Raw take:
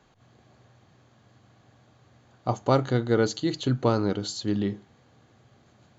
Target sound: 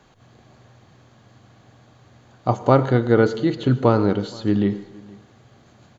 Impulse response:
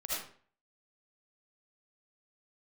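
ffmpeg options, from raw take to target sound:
-filter_complex "[0:a]acrossover=split=2900[link_01][link_02];[link_02]acompressor=threshold=-53dB:ratio=4:attack=1:release=60[link_03];[link_01][link_03]amix=inputs=2:normalize=0,aecho=1:1:470:0.0631,asplit=2[link_04][link_05];[1:a]atrim=start_sample=2205,asetrate=31752,aresample=44100[link_06];[link_05][link_06]afir=irnorm=-1:irlink=0,volume=-19.5dB[link_07];[link_04][link_07]amix=inputs=2:normalize=0,volume=6dB"

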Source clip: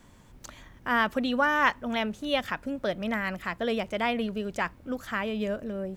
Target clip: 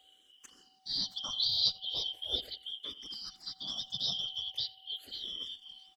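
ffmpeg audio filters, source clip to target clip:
ffmpeg -i in.wav -filter_complex "[0:a]afftfilt=real='real(if(lt(b,272),68*(eq(floor(b/68),0)*2+eq(floor(b/68),1)*3+eq(floor(b/68),2)*0+eq(floor(b/68),3)*1)+mod(b,68),b),0)':imag='imag(if(lt(b,272),68*(eq(floor(b/68),0)*2+eq(floor(b/68),1)*3+eq(floor(b/68),2)*0+eq(floor(b/68),3)*1)+mod(b,68),b),0)':win_size=2048:overlap=0.75,afftfilt=real='hypot(re,im)*cos(2*PI*random(0))':imag='hypot(re,im)*sin(2*PI*random(1))':win_size=512:overlap=0.75,aeval=exprs='val(0)+0.000794*sin(2*PI*760*n/s)':channel_layout=same,asplit=2[link_01][link_02];[link_02]adelay=86,lowpass=frequency=2300:poles=1,volume=-18dB,asplit=2[link_03][link_04];[link_04]adelay=86,lowpass=frequency=2300:poles=1,volume=0.32,asplit=2[link_05][link_06];[link_06]adelay=86,lowpass=frequency=2300:poles=1,volume=0.32[link_07];[link_03][link_05][link_07]amix=inputs=3:normalize=0[link_08];[link_01][link_08]amix=inputs=2:normalize=0,asplit=2[link_09][link_10];[link_10]afreqshift=-0.39[link_11];[link_09][link_11]amix=inputs=2:normalize=1" out.wav

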